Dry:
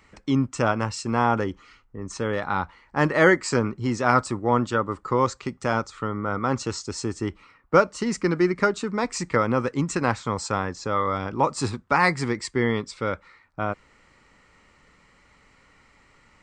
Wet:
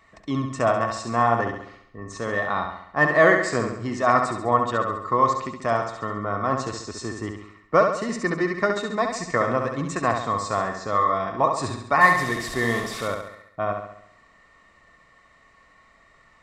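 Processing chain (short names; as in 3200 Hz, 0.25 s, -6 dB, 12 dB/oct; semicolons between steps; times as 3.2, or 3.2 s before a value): 12.01–13.08 delta modulation 64 kbps, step -27 dBFS; small resonant body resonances 670/1100/1800/3700 Hz, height 16 dB, ringing for 55 ms; on a send: flutter echo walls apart 11.7 m, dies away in 0.71 s; on the sum: gain -4.5 dB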